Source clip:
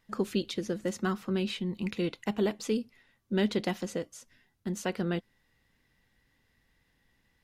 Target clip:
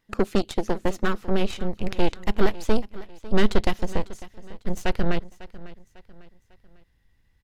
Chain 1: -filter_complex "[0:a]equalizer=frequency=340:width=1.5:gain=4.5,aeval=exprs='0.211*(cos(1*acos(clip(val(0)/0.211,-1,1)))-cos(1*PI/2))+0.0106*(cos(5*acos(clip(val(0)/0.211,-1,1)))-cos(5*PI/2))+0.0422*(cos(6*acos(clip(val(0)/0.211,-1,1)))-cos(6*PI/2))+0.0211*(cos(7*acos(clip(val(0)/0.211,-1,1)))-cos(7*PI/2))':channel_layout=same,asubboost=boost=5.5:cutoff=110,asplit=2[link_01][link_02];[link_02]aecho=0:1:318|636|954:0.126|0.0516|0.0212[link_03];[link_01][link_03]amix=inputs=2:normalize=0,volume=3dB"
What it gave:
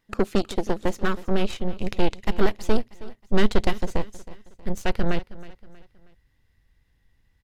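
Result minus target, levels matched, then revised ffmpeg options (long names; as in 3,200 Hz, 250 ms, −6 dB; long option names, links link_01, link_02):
echo 231 ms early
-filter_complex "[0:a]equalizer=frequency=340:width=1.5:gain=4.5,aeval=exprs='0.211*(cos(1*acos(clip(val(0)/0.211,-1,1)))-cos(1*PI/2))+0.0106*(cos(5*acos(clip(val(0)/0.211,-1,1)))-cos(5*PI/2))+0.0422*(cos(6*acos(clip(val(0)/0.211,-1,1)))-cos(6*PI/2))+0.0211*(cos(7*acos(clip(val(0)/0.211,-1,1)))-cos(7*PI/2))':channel_layout=same,asubboost=boost=5.5:cutoff=110,asplit=2[link_01][link_02];[link_02]aecho=0:1:549|1098|1647:0.126|0.0516|0.0212[link_03];[link_01][link_03]amix=inputs=2:normalize=0,volume=3dB"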